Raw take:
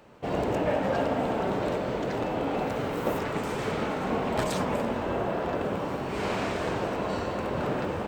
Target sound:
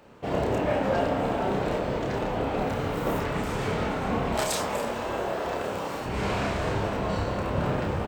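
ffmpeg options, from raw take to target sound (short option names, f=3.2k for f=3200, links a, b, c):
-filter_complex "[0:a]asettb=1/sr,asplit=3[a][b][c];[a]atrim=end=4.344[d];[b]atrim=start=4.34:end=6.06,asetpts=PTS-STARTPTS,afade=t=in:d=0.004:c=qsin,afade=t=out:st=1.716:d=0.004:c=qsin,bass=f=250:g=-12,treble=f=4k:g=8[e];[c]atrim=start=6.056[f];[d][e]acrossfade=d=0.004:c1=hsin:c2=qsin[g];[g][f]acrossfade=d=0.004:c1=qsin:c2=hsin,asplit=2[h][i];[i]adelay=30,volume=-3.5dB[j];[h][j]amix=inputs=2:normalize=0,asubboost=boost=2.5:cutoff=150"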